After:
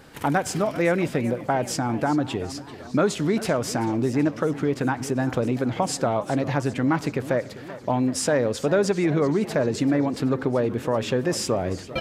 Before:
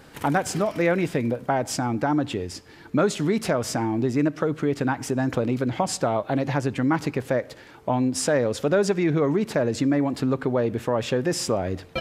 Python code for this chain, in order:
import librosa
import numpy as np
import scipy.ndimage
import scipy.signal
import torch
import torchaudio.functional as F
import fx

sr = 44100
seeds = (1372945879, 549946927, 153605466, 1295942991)

y = fx.echo_warbled(x, sr, ms=389, feedback_pct=61, rate_hz=2.8, cents=175, wet_db=-16)